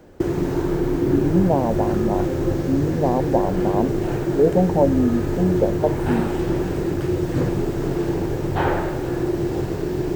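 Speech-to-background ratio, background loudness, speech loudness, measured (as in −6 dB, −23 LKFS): 0.5 dB, −23.0 LKFS, −22.5 LKFS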